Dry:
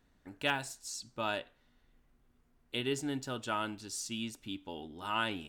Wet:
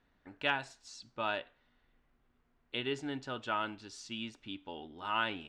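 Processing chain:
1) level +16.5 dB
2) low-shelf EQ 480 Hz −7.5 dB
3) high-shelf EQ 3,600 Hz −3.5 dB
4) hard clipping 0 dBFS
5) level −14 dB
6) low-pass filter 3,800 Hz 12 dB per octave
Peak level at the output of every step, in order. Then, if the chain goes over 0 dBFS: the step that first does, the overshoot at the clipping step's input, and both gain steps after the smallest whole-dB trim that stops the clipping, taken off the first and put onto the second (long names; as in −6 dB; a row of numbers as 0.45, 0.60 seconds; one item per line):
−1.5, −1.5, −2.5, −2.5, −16.5, −17.0 dBFS
no step passes full scale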